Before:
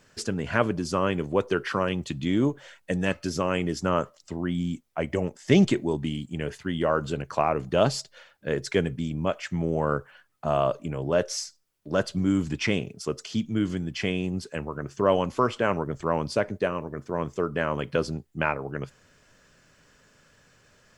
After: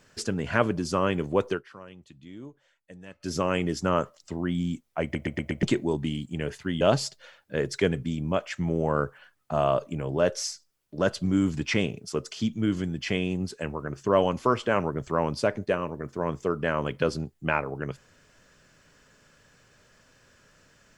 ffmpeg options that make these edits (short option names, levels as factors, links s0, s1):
-filter_complex "[0:a]asplit=9[s0][s1][s2][s3][s4][s5][s6][s7][s8];[s0]atrim=end=1.62,asetpts=PTS-STARTPTS,afade=t=out:st=1.49:d=0.13:silence=0.105925[s9];[s1]atrim=start=1.62:end=3.19,asetpts=PTS-STARTPTS,volume=0.106[s10];[s2]atrim=start=3.19:end=5.152,asetpts=PTS-STARTPTS,afade=t=in:d=0.13:silence=0.105925[s11];[s3]atrim=start=5.028:end=5.152[s12];[s4]atrim=start=5.028:end=5.152[s13];[s5]atrim=start=5.028:end=5.152[s14];[s6]atrim=start=5.028:end=5.152[s15];[s7]atrim=start=5.628:end=6.812[s16];[s8]atrim=start=7.738[s17];[s9][s10][s11]concat=n=3:v=0:a=1[s18];[s18][s12]acrossfade=d=0.004:c1=hsin:c2=hsin[s19];[s19][s13]acrossfade=d=0.004:c1=hsin:c2=hsin[s20];[s20][s14]acrossfade=d=0.004:c1=hsin:c2=hsin[s21];[s21][s15]acrossfade=d=0.004:c1=hsin:c2=hsin[s22];[s22][s16]acrossfade=d=0.004:c1=hsin:c2=hsin[s23];[s23][s17]acrossfade=d=0.004:c1=hsin:c2=hsin"